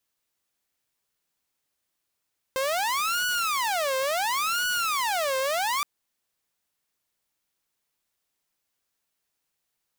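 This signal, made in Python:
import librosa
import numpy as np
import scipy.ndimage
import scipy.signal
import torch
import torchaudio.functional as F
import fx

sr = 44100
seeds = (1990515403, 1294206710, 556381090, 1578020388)

y = fx.siren(sr, length_s=3.27, kind='wail', low_hz=525.0, high_hz=1470.0, per_s=0.71, wave='saw', level_db=-21.5)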